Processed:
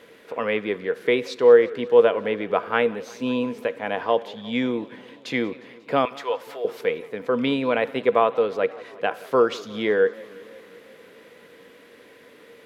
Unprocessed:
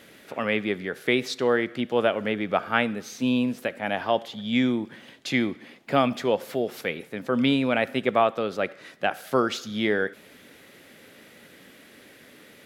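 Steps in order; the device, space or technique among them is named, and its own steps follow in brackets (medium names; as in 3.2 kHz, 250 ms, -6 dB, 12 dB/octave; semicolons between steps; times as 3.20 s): inside a helmet (treble shelf 5 kHz -6 dB; small resonant body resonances 470/1000 Hz, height 14 dB, ringing for 85 ms); 6.05–6.65 s: high-pass 850 Hz 12 dB/octave; tone controls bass -5 dB, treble -2 dB; modulated delay 178 ms, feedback 71%, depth 214 cents, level -22 dB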